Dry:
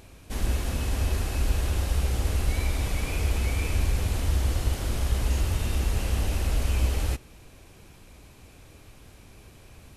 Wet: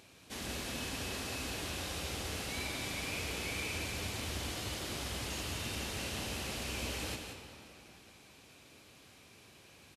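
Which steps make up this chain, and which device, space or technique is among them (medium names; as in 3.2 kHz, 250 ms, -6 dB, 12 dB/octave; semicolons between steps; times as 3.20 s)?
PA in a hall (high-pass 140 Hz 12 dB/octave; peaking EQ 3.9 kHz +7 dB 2.2 oct; delay 176 ms -8 dB; reverberation RT60 3.4 s, pre-delay 35 ms, DRR 6 dB); trim -8.5 dB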